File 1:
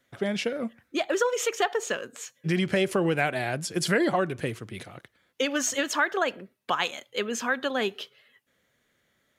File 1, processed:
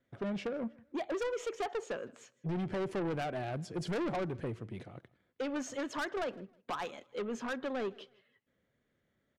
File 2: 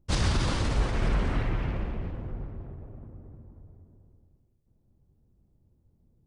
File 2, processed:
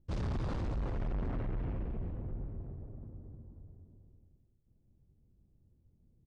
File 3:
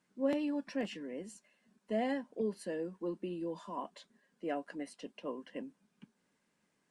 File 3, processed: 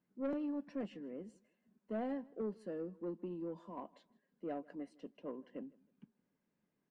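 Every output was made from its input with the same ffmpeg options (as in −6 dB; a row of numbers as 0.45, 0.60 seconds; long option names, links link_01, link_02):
-filter_complex "[0:a]lowpass=9000,highshelf=frequency=3100:gain=-11.5,asplit=2[link_01][link_02];[link_02]adynamicsmooth=sensitivity=1.5:basefreq=720,volume=0dB[link_03];[link_01][link_03]amix=inputs=2:normalize=0,asoftclip=type=tanh:threshold=-23.5dB,aecho=1:1:158|316:0.0631|0.0177,volume=-8dB"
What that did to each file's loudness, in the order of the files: −10.5, −9.0, −5.0 LU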